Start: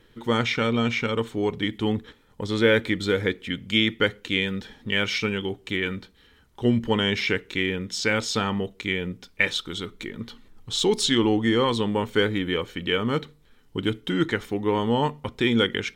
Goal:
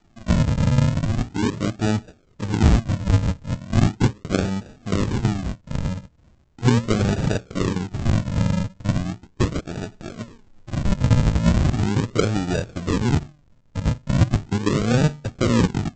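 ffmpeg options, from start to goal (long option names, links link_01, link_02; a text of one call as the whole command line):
ffmpeg -i in.wav -af "aresample=16000,acrusher=samples=29:mix=1:aa=0.000001:lfo=1:lforange=29:lforate=0.38,aresample=44100,adynamicequalizer=threshold=0.0141:dfrequency=120:dqfactor=0.85:tfrequency=120:tqfactor=0.85:attack=5:release=100:ratio=0.375:range=4:mode=boostabove:tftype=bell" out.wav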